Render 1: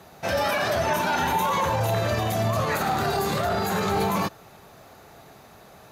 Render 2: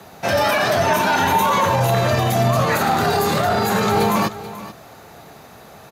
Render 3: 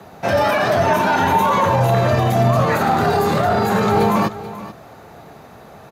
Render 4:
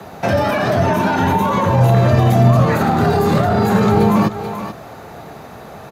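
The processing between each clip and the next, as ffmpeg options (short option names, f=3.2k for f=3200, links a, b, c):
-af "afreqshift=13,aecho=1:1:434:0.168,volume=6.5dB"
-af "highshelf=f=2.4k:g=-9.5,volume=2.5dB"
-filter_complex "[0:a]acrossover=split=350[a][b];[b]acompressor=threshold=-25dB:ratio=3[c];[a][c]amix=inputs=2:normalize=0,volume=6dB"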